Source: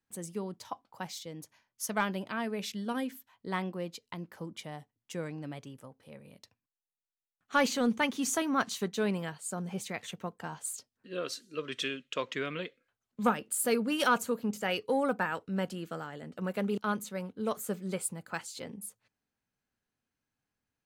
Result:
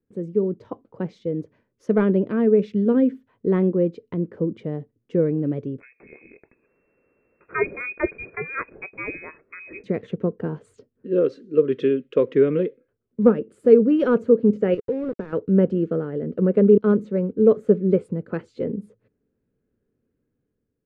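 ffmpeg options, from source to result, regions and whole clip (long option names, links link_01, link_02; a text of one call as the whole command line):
ffmpeg -i in.wav -filter_complex "[0:a]asettb=1/sr,asplit=3[link_01][link_02][link_03];[link_01]atrim=end=5.804[link_04];[link_02]atrim=start=5.8:end=9.84,asetpts=PTS-STARTPTS,afade=type=in:duration=0.004:curve=qsin,afade=type=out:start_time=4.036:duration=0.004:curve=qsin,acompressor=mode=upward:threshold=-40dB:ratio=2.5:attack=3.2:release=140:knee=2.83:detection=peak,lowpass=frequency=2300:width_type=q:width=0.5098,lowpass=frequency=2300:width_type=q:width=0.6013,lowpass=frequency=2300:width_type=q:width=0.9,lowpass=frequency=2300:width_type=q:width=2.563,afreqshift=-2700[link_05];[link_03]atrim=start=9.836[link_06];[link_04][link_05]acrossfade=duration=0.004:curve1=hsin:curve2=qsin[link_07];[link_07][link_06]acrossfade=duration=0.004:curve1=qsin:curve2=hsin,asettb=1/sr,asplit=3[link_08][link_09][link_10];[link_08]atrim=end=14.744[link_11];[link_09]atrim=start=14.74:end=15.33,asetpts=PTS-STARTPTS,afade=type=in:duration=0.004:curve=qsin,afade=type=out:start_time=0.586:duration=0.004:curve=qsin,lowshelf=frequency=85:gain=10,acompressor=threshold=-37dB:ratio=10:attack=3.2:release=140:knee=1:detection=peak,aeval=exprs='val(0)*gte(abs(val(0)),0.00708)':channel_layout=same[link_12];[link_10]atrim=start=15.326[link_13];[link_11][link_12]acrossfade=duration=0.004:curve1=hsin:curve2=qsin[link_14];[link_14][link_13]acrossfade=duration=0.004:curve1=qsin:curve2=hsin,lowpass=1500,lowshelf=frequency=600:width_type=q:width=3:gain=10,dynaudnorm=framelen=120:gausssize=9:maxgain=5dB" out.wav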